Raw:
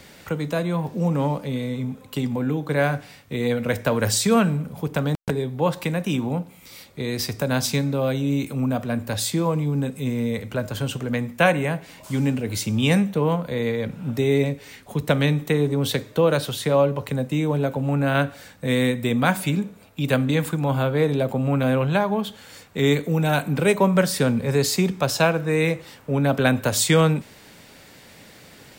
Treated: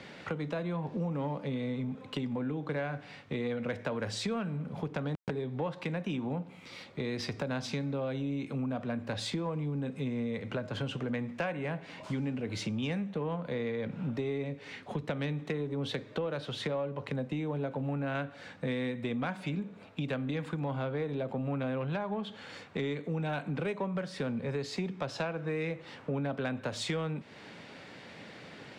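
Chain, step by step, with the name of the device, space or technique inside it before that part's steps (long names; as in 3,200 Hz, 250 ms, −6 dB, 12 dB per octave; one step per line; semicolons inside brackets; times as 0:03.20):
AM radio (band-pass filter 120–3,500 Hz; downward compressor 6 to 1, threshold −31 dBFS, peak gain reduction 17.5 dB; soft clipping −22.5 dBFS, distortion −24 dB)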